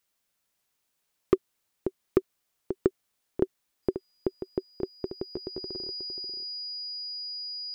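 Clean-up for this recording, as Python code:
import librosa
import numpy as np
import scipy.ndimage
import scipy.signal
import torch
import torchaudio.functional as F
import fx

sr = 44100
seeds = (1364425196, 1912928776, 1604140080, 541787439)

y = fx.fix_declip(x, sr, threshold_db=-10.5)
y = fx.notch(y, sr, hz=4900.0, q=30.0)
y = fx.fix_echo_inverse(y, sr, delay_ms=536, level_db=-10.5)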